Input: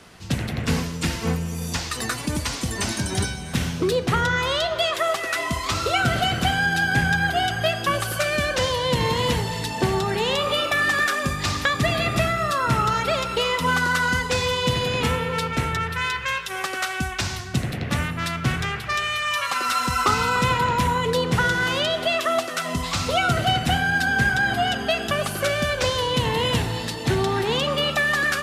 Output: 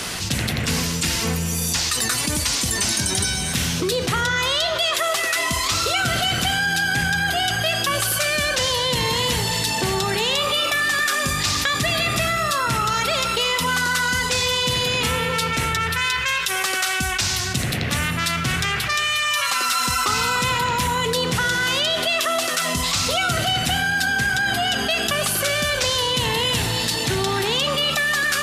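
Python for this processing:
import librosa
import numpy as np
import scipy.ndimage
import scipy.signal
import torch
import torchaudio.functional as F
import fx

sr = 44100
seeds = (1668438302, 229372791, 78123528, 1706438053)

y = fx.high_shelf(x, sr, hz=2400.0, db=12.0)
y = fx.env_flatten(y, sr, amount_pct=70)
y = F.gain(torch.from_numpy(y), -6.5).numpy()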